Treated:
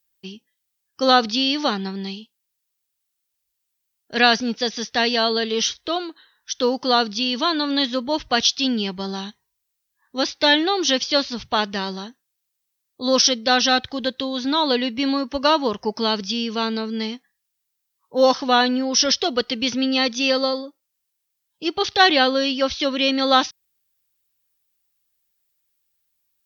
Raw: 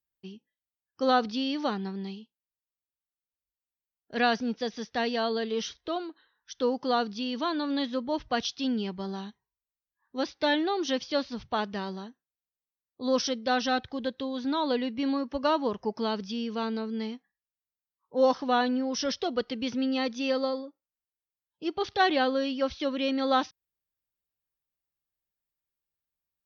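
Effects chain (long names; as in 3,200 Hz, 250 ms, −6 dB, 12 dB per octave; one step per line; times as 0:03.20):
high-shelf EQ 2,100 Hz +11.5 dB
level +6 dB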